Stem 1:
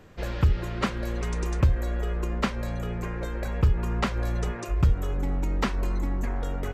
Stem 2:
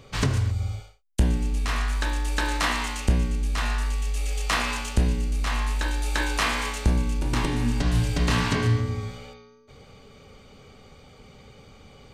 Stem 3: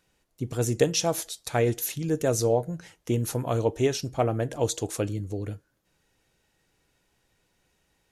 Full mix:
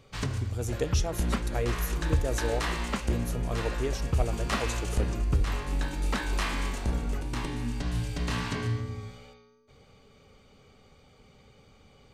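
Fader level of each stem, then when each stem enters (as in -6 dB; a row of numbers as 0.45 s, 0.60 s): -5.5 dB, -8.0 dB, -8.5 dB; 0.50 s, 0.00 s, 0.00 s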